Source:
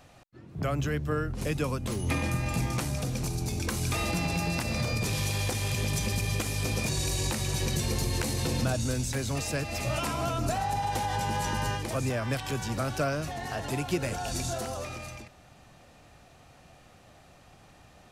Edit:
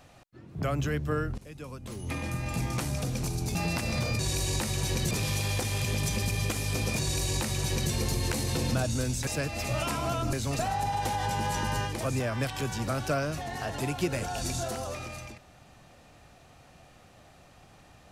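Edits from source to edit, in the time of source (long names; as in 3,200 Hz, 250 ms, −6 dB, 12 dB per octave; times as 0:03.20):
0:01.38–0:02.93: fade in, from −20.5 dB
0:03.55–0:04.37: remove
0:06.90–0:07.82: duplicate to 0:05.01
0:09.17–0:09.43: move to 0:10.49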